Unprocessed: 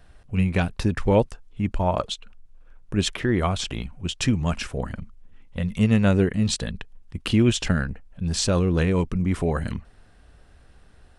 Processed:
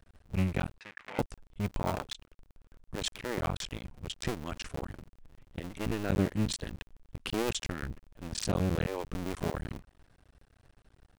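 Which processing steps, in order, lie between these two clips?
cycle switcher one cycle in 2, muted; 0.79–1.19 band-pass 2100 Hz, Q 2.1; gain -7 dB

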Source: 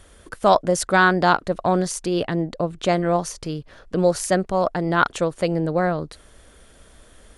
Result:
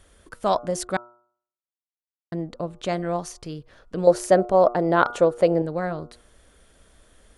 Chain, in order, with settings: 0.97–2.32 mute; 4.07–5.62 bell 550 Hz +11.5 dB 2 oct; de-hum 119.6 Hz, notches 12; gain -6 dB

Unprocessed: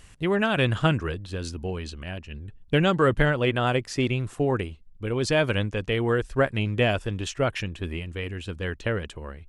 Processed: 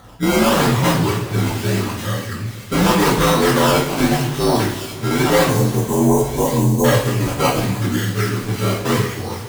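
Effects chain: inharmonic rescaling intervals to 82%; HPF 54 Hz; in parallel at -10 dB: sine folder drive 13 dB, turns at -9 dBFS; on the sum: decimation with a swept rate 17×, swing 100% 0.84 Hz; spectral delete 5.45–6.84, 1100–5800 Hz; on a send: thin delay 1.136 s, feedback 32%, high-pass 2600 Hz, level -9 dB; on the sum: two-slope reverb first 0.55 s, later 3.8 s, from -18 dB, DRR -4 dB; gain -1 dB

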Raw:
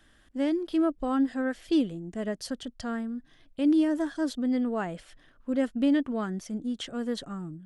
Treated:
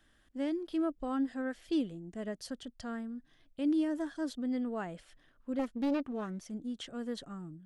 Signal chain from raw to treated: 5.59–6.51 Doppler distortion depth 0.46 ms; gain -7 dB

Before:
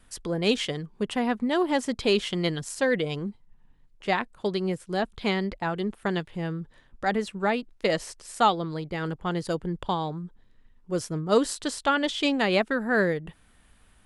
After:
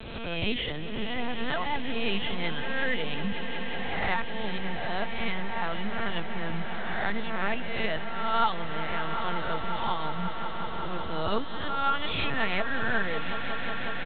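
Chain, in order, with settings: spectral swells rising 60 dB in 0.83 s; HPF 92 Hz 6 dB/oct; bell 410 Hz -11.5 dB 0.91 oct; comb 4.4 ms, depth 63%; reverse; upward compressor, threshold -25 dBFS; reverse; wow and flutter 24 cents; LPC vocoder at 8 kHz pitch kept; on a send: swelling echo 0.183 s, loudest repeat 5, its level -15 dB; on the sum: three-band squash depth 40%; gain -4.5 dB

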